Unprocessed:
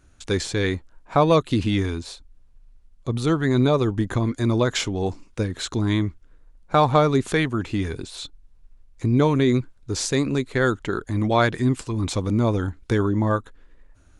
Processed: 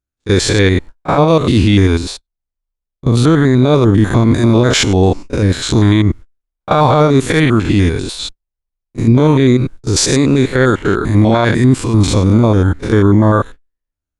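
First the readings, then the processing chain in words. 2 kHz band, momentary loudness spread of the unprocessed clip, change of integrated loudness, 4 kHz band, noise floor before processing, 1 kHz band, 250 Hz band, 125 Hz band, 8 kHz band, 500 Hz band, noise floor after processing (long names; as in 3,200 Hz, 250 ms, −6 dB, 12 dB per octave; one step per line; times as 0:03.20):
+9.5 dB, 10 LU, +11.0 dB, +11.0 dB, −54 dBFS, +7.5 dB, +11.5 dB, +12.0 dB, +12.5 dB, +9.5 dB, −81 dBFS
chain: spectrum averaged block by block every 100 ms
noise gate −39 dBFS, range −45 dB
echo ahead of the sound 31 ms −17 dB
boost into a limiter +17 dB
level −1 dB
Opus 256 kbit/s 48,000 Hz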